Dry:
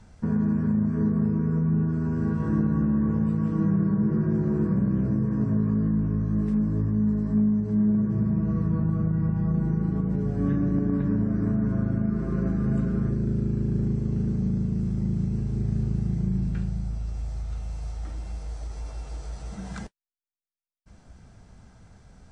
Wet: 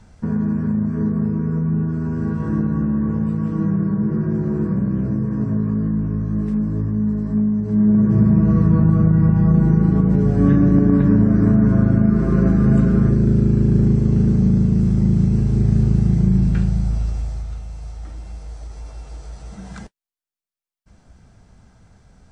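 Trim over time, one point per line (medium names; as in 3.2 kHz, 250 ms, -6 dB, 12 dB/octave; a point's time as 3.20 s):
7.54 s +3.5 dB
8.14 s +10.5 dB
17.01 s +10.5 dB
17.67 s +1 dB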